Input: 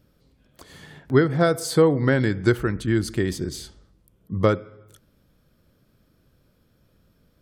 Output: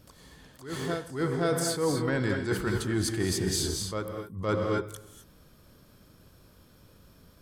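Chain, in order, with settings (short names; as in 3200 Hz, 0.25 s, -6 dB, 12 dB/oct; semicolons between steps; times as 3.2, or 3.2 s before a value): bell 8400 Hz +6.5 dB 2.1 oct; reverse echo 0.516 s -16.5 dB; in parallel at -5 dB: soft clip -20 dBFS, distortion -8 dB; on the sum: non-linear reverb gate 0.28 s rising, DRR 5.5 dB; reverse; compressor 8:1, threshold -25 dBFS, peak gain reduction 15 dB; reverse; bell 990 Hz +6 dB 0.57 oct; attack slew limiter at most 140 dB/s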